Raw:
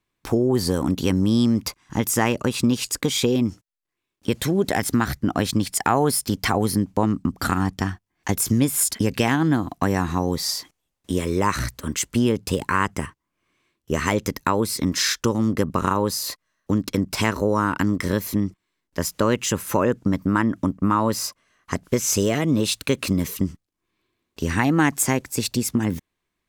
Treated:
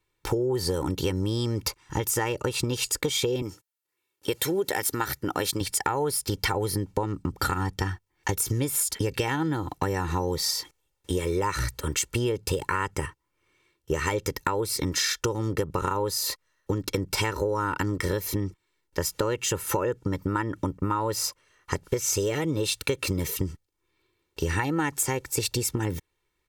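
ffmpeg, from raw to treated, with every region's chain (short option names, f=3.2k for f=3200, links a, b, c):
-filter_complex "[0:a]asettb=1/sr,asplit=3[a][b][c];[a]atrim=end=3.424[d];[b]atrim=start=3.42:end=5.61,asetpts=PTS-STARTPTS,afade=t=in:d=0.004:c=qsin,afade=t=out:st=2.186:d=0.004:c=qsin,highpass=f=270:p=1,equalizer=f=14k:w=0.68:g=8[e];[c]atrim=start=5.606[f];[d][e]acrossfade=d=0.004:c1=hsin:c2=qsin[g];[g][f]acrossfade=d=0.004:c1=qsin:c2=hsin,aecho=1:1:2.2:0.76,acompressor=threshold=-23dB:ratio=6"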